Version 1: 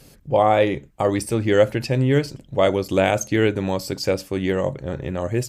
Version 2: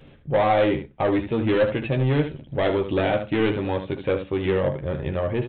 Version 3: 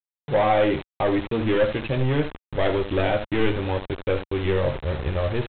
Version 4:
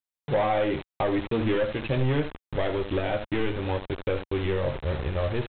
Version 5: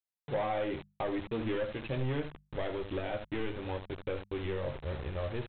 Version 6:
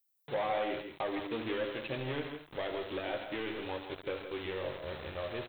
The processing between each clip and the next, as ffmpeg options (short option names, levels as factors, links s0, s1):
-af "aresample=8000,asoftclip=type=tanh:threshold=0.15,aresample=44100,aecho=1:1:13|76:0.531|0.355"
-af "aresample=8000,aeval=exprs='val(0)*gte(abs(val(0)),0.0335)':c=same,aresample=44100,asubboost=boost=6:cutoff=67"
-af "alimiter=limit=0.141:level=0:latency=1:release=364"
-af "bandreject=f=50:t=h:w=6,bandreject=f=100:t=h:w=6,bandreject=f=150:t=h:w=6,bandreject=f=200:t=h:w=6,volume=0.376"
-filter_complex "[0:a]aemphasis=mode=production:type=bsi,asplit=2[s0][s1];[s1]aecho=0:1:136|139|163:0.224|0.141|0.355[s2];[s0][s2]amix=inputs=2:normalize=0"